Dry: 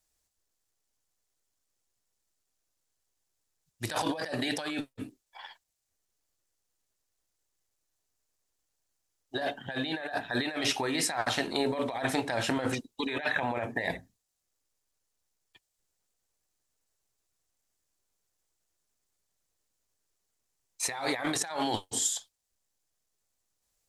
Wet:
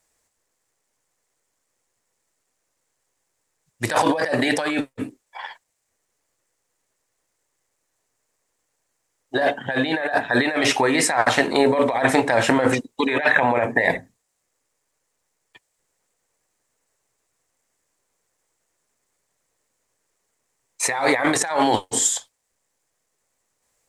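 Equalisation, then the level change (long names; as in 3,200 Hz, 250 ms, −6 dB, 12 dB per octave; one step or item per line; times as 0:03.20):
graphic EQ with 10 bands 125 Hz +6 dB, 250 Hz +6 dB, 500 Hz +10 dB, 1,000 Hz +8 dB, 2,000 Hz +10 dB, 8,000 Hz +8 dB
+1.5 dB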